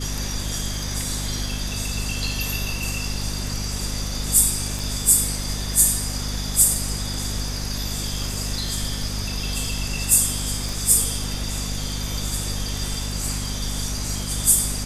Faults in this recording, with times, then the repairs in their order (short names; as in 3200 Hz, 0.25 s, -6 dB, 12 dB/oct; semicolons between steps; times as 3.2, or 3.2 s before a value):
hum 50 Hz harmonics 5 -29 dBFS
4.79 pop
10.69 pop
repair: de-click; de-hum 50 Hz, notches 5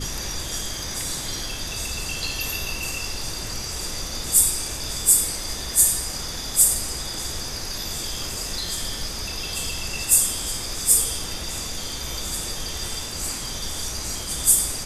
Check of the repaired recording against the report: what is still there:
none